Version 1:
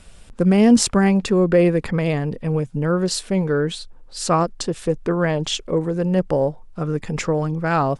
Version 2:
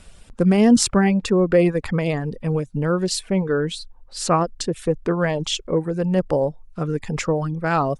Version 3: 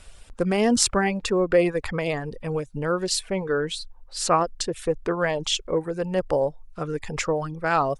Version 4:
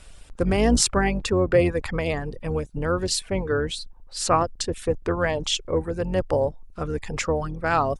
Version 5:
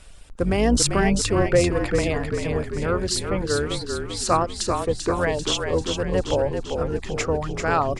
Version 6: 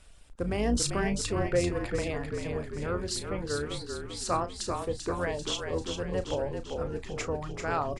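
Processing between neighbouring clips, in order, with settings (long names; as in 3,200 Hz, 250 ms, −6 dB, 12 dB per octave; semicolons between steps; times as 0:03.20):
reverb reduction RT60 0.58 s
parametric band 190 Hz −9.5 dB 1.6 octaves
sub-octave generator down 2 octaves, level −1 dB
echo with shifted repeats 392 ms, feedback 56%, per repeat −41 Hz, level −5.5 dB
double-tracking delay 34 ms −11.5 dB; level −9 dB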